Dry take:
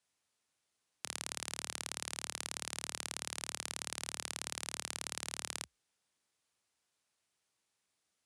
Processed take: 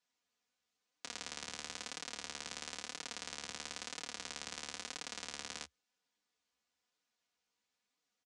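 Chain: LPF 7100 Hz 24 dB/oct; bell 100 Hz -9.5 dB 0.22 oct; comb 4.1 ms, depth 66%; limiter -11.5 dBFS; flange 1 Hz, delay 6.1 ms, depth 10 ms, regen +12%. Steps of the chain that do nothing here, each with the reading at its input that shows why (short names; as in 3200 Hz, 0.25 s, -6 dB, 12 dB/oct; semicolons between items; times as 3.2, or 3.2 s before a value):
limiter -11.5 dBFS: input peak -18.5 dBFS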